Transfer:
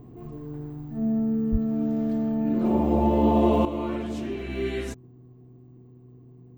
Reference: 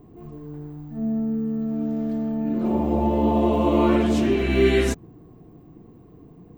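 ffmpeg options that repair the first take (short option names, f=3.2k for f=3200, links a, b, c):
-filter_complex "[0:a]bandreject=f=124.6:t=h:w=4,bandreject=f=249.2:t=h:w=4,bandreject=f=373.8:t=h:w=4,asplit=3[a][b][c];[a]afade=t=out:st=1.51:d=0.02[d];[b]highpass=f=140:w=0.5412,highpass=f=140:w=1.3066,afade=t=in:st=1.51:d=0.02,afade=t=out:st=1.63:d=0.02[e];[c]afade=t=in:st=1.63:d=0.02[f];[d][e][f]amix=inputs=3:normalize=0,asetnsamples=n=441:p=0,asendcmd='3.65 volume volume 11dB',volume=0dB"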